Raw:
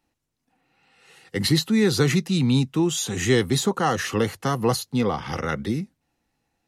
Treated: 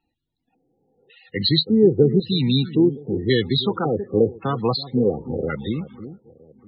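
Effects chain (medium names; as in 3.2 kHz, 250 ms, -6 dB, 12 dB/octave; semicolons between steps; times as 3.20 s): echo whose repeats swap between lows and highs 322 ms, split 930 Hz, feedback 52%, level -13 dB; LFO low-pass square 0.91 Hz 440–3800 Hz; loudest bins only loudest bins 32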